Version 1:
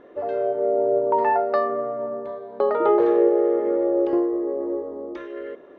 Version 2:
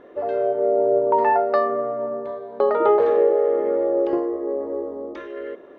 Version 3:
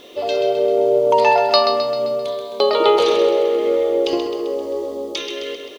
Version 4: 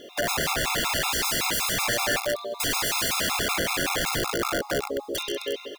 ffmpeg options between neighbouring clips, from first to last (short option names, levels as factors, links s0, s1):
-af "bandreject=f=50:t=h:w=6,bandreject=f=100:t=h:w=6,bandreject=f=150:t=h:w=6,bandreject=f=200:t=h:w=6,bandreject=f=250:t=h:w=6,bandreject=f=300:t=h:w=6,bandreject=f=350:t=h:w=6,volume=1.26"
-af "aecho=1:1:131|262|393|524|655|786|917:0.422|0.236|0.132|0.0741|0.0415|0.0232|0.013,aexciter=amount=13.8:drive=8.6:freq=2700,volume=1.33"
-af "aeval=exprs='(mod(7.94*val(0)+1,2)-1)/7.94':c=same,afftfilt=real='re*gt(sin(2*PI*5.3*pts/sr)*(1-2*mod(floor(b*sr/1024/690),2)),0)':imag='im*gt(sin(2*PI*5.3*pts/sr)*(1-2*mod(floor(b*sr/1024/690),2)),0)':win_size=1024:overlap=0.75"